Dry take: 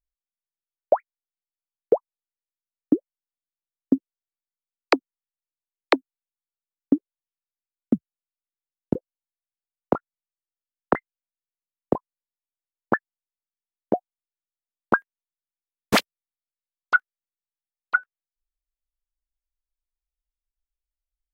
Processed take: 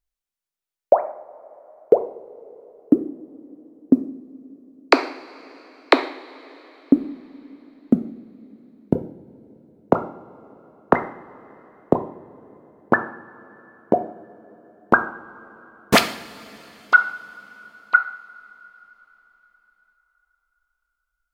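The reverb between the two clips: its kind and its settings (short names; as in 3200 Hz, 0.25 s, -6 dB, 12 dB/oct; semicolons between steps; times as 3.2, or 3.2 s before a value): two-slope reverb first 0.6 s, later 4.6 s, from -19 dB, DRR 7 dB; gain +4.5 dB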